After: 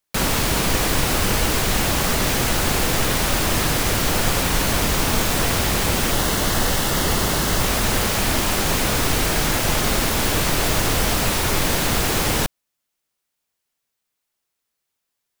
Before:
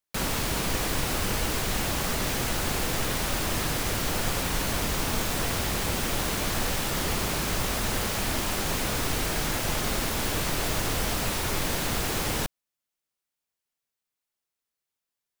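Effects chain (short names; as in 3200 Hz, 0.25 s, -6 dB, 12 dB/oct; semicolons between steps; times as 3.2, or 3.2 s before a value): 6.11–7.61 notch 2400 Hz, Q 7.1; gain +8 dB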